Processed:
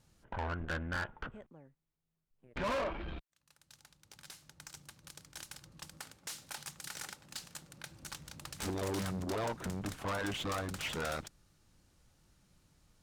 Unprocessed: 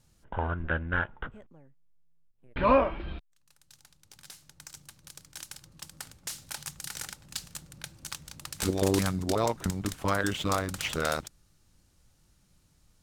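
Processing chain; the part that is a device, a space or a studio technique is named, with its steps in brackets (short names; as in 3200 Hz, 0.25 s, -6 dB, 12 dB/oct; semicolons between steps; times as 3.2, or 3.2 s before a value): tube preamp driven hard (tube stage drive 33 dB, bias 0.3; low shelf 160 Hz -4.5 dB; high shelf 4300 Hz -6 dB); 5.98–7.91 low shelf 120 Hz -12 dB; gain +1.5 dB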